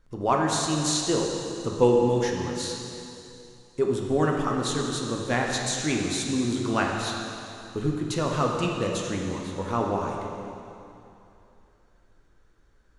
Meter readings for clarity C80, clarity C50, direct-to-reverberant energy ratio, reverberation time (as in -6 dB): 2.5 dB, 1.5 dB, -0.5 dB, 2.8 s